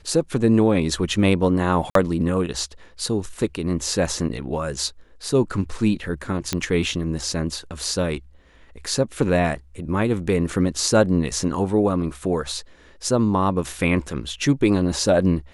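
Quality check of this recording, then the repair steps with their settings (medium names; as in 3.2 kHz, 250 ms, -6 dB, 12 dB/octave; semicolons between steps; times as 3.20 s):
1.90–1.95 s: dropout 53 ms
6.53 s: pop -7 dBFS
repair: de-click; interpolate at 1.90 s, 53 ms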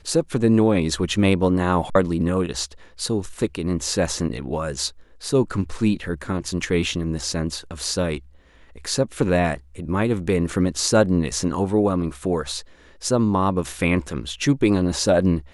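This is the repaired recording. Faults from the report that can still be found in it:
nothing left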